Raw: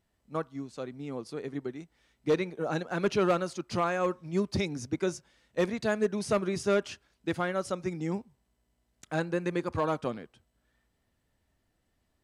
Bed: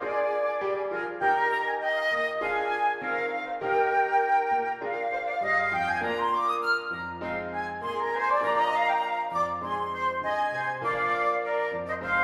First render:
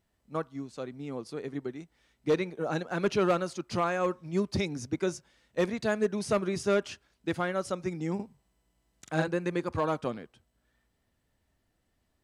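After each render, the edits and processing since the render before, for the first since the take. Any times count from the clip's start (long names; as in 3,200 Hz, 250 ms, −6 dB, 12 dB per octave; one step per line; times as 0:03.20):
0:08.15–0:09.28: double-tracking delay 44 ms −2 dB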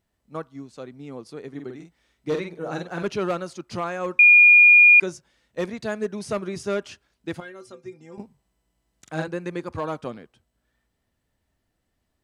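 0:01.52–0:03.03: double-tracking delay 47 ms −5 dB
0:04.19–0:05.00: beep over 2,430 Hz −8.5 dBFS
0:07.40–0:08.18: stiff-string resonator 120 Hz, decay 0.2 s, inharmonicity 0.008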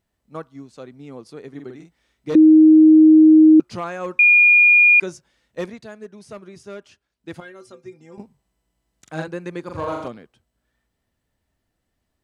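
0:02.35–0:03.60: beep over 313 Hz −6 dBFS
0:05.60–0:07.44: duck −10 dB, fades 0.28 s
0:09.62–0:10.08: flutter between parallel walls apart 7 metres, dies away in 0.78 s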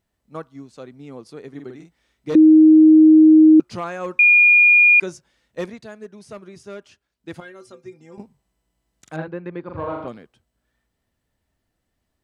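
0:09.16–0:10.08: high-frequency loss of the air 390 metres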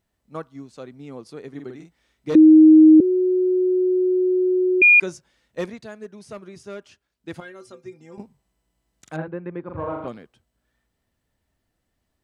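0:03.00–0:04.82: beep over 367 Hz −16 dBFS
0:09.17–0:10.04: high-frequency loss of the air 350 metres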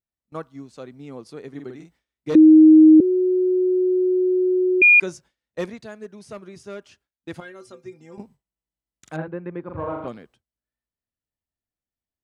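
noise gate with hold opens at −44 dBFS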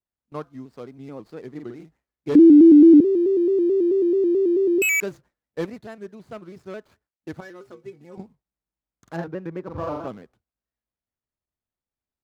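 running median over 15 samples
pitch modulation by a square or saw wave square 4.6 Hz, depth 100 cents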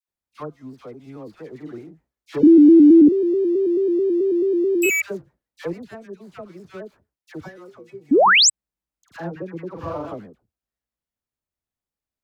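all-pass dispersion lows, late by 85 ms, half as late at 1,100 Hz
0:08.11–0:08.50: sound drawn into the spectrogram rise 240–8,500 Hz −13 dBFS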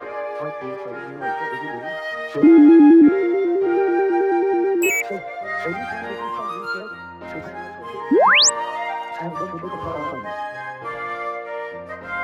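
mix in bed −1.5 dB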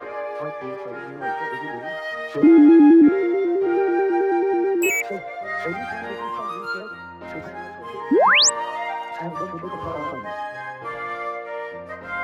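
level −1.5 dB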